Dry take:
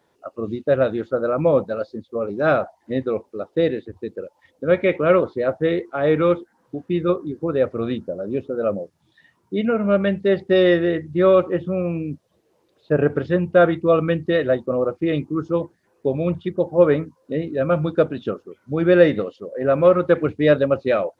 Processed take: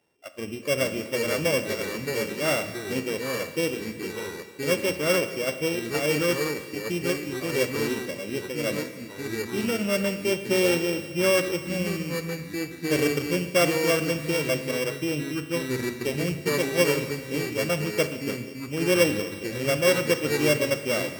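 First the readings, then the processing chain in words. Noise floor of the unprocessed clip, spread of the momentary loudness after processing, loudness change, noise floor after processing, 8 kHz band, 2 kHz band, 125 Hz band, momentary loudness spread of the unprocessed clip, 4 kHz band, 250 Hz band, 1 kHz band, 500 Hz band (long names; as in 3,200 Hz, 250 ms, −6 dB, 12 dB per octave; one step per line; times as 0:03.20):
−65 dBFS, 10 LU, −5.5 dB, −39 dBFS, can't be measured, +1.0 dB, −5.5 dB, 13 LU, +7.0 dB, −6.0 dB, −7.0 dB, −7.5 dB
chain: samples sorted by size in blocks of 16 samples
four-comb reverb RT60 1.7 s, combs from 27 ms, DRR 10 dB
delay with pitch and tempo change per echo 347 ms, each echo −3 semitones, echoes 2, each echo −6 dB
level −7.5 dB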